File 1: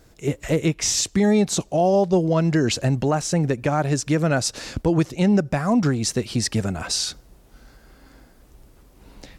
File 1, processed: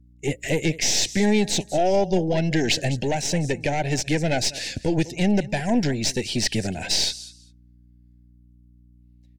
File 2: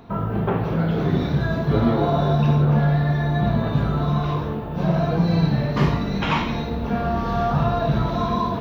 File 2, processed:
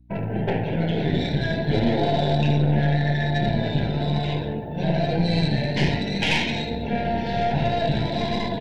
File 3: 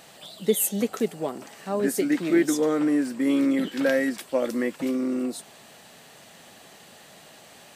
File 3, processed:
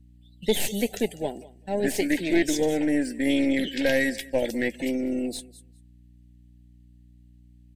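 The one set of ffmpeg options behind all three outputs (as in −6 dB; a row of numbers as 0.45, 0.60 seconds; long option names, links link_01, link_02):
-filter_complex "[0:a]agate=range=-17dB:threshold=-38dB:ratio=16:detection=peak,highpass=68,tiltshelf=frequency=1300:gain=-8,afftdn=noise_reduction=22:noise_floor=-41,equalizer=frequency=5800:width=0.54:gain=-6.5,asplit=2[link_01][link_02];[link_02]aecho=0:1:199|398:0.1|0.015[link_03];[link_01][link_03]amix=inputs=2:normalize=0,aeval=exprs='(tanh(11.2*val(0)+0.6)-tanh(0.6))/11.2':channel_layout=same,aeval=exprs='val(0)+0.001*(sin(2*PI*60*n/s)+sin(2*PI*2*60*n/s)/2+sin(2*PI*3*60*n/s)/3+sin(2*PI*4*60*n/s)/4+sin(2*PI*5*60*n/s)/5)':channel_layout=same,acrossover=split=6100[link_04][link_05];[link_05]acompressor=threshold=-47dB:ratio=4:attack=1:release=60[link_06];[link_04][link_06]amix=inputs=2:normalize=0,asuperstop=centerf=1200:order=4:qfactor=1.3,volume=8.5dB"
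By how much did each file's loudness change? −1.5, −2.0, −1.0 LU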